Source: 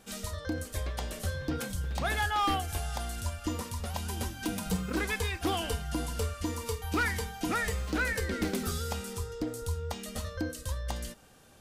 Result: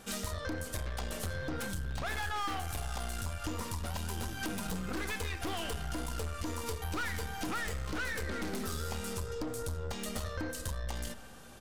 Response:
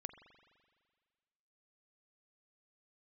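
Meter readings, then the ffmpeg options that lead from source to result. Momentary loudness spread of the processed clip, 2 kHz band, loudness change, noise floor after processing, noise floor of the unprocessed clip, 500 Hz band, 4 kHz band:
3 LU, -4.0 dB, -4.0 dB, -45 dBFS, -48 dBFS, -4.0 dB, -3.5 dB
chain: -filter_complex "[0:a]aresample=32000,aresample=44100,aeval=exprs='(tanh(50.1*val(0)+0.5)-tanh(0.5))/50.1':c=same,asplit=2[a][b];[1:a]atrim=start_sample=2205,asetrate=48510,aresample=44100[c];[b][c]afir=irnorm=-1:irlink=0,volume=6.5dB[d];[a][d]amix=inputs=2:normalize=0,acompressor=threshold=-33dB:ratio=6,equalizer=f=1.3k:t=o:w=0.77:g=2.5"

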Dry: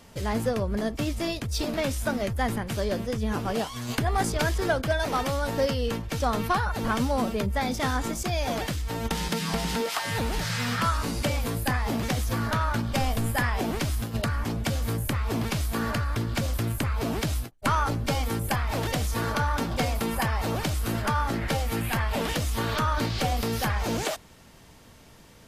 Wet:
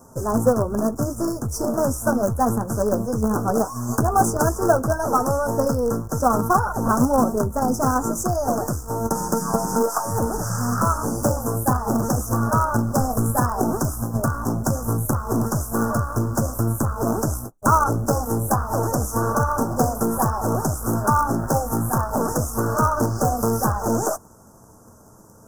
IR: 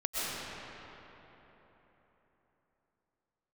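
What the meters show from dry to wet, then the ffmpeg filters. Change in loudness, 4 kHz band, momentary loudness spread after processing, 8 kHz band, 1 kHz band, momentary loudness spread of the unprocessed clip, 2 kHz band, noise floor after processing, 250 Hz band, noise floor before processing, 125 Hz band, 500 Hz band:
+6.0 dB, -9.5 dB, 5 LU, +8.0 dB, +7.5 dB, 3 LU, -2.5 dB, -48 dBFS, +7.0 dB, -51 dBFS, +5.0 dB, +7.5 dB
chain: -filter_complex "[0:a]flanger=delay=7.6:depth=1.8:regen=-35:speed=0.14:shape=triangular,lowshelf=f=70:g=-9,asplit=2[a][b];[b]acrusher=bits=5:dc=4:mix=0:aa=0.000001,volume=-6dB[c];[a][c]amix=inputs=2:normalize=0,asuperstop=centerf=2900:order=12:qfactor=0.67,volume=9dB"

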